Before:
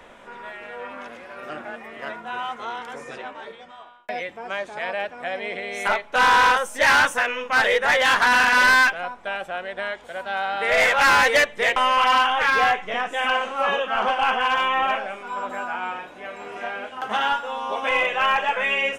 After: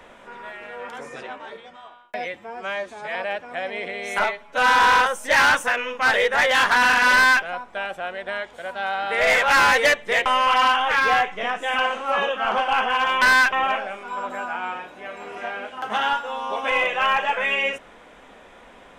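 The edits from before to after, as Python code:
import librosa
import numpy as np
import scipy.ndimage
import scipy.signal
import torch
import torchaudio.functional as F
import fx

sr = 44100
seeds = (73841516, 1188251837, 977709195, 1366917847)

y = fx.edit(x, sr, fx.cut(start_s=0.89, length_s=1.95),
    fx.stretch_span(start_s=4.32, length_s=0.52, factor=1.5),
    fx.stretch_span(start_s=5.93, length_s=0.37, factor=1.5),
    fx.duplicate(start_s=8.63, length_s=0.31, to_s=14.72), tone=tone)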